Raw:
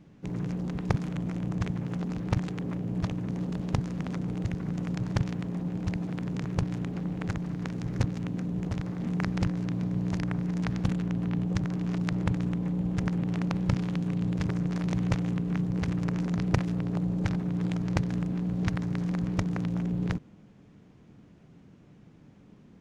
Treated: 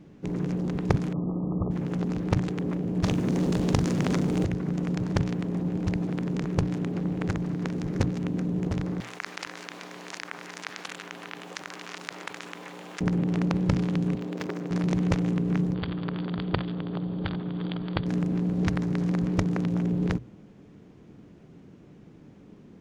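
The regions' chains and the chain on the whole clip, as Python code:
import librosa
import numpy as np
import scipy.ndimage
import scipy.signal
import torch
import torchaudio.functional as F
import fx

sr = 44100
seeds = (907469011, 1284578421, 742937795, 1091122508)

y = fx.chain(x, sr, fx.cvsd(bps=16000),
    fx.brickwall_lowpass(high_hz=1300.0), at=(1.13, 1.71))
y = fx.chain(y, sr, fx.high_shelf(hz=3700.0, db=8.5),
    fx.doubler(ms=42.0, db=-10.5),
    fx.env_flatten(amount_pct=50), at=(3.03, 4.45))
y = fx.chain(y, sr, fx.highpass(hz=1300.0, slope=12),
    fx.env_flatten(amount_pct=50), at=(9.0, 13.01))
y = fx.chain(y, sr, fx.highpass(hz=320.0, slope=12),
    fx.resample_linear(factor=2), at=(14.15, 14.71))
y = fx.chain(y, sr, fx.cheby_ripple(hz=4700.0, ripple_db=6),
    fx.peak_eq(hz=3300.0, db=8.0, octaves=0.66), at=(15.74, 18.06))
y = fx.peak_eq(y, sr, hz=380.0, db=5.5, octaves=1.0)
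y = fx.hum_notches(y, sr, base_hz=60, count=2)
y = y * librosa.db_to_amplitude(2.5)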